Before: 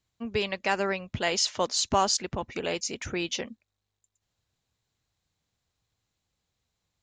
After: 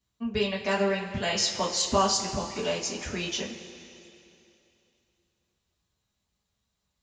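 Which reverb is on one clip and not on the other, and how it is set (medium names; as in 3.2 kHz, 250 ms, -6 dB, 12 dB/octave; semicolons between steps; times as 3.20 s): two-slope reverb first 0.22 s, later 2.8 s, from -18 dB, DRR -5 dB; trim -6 dB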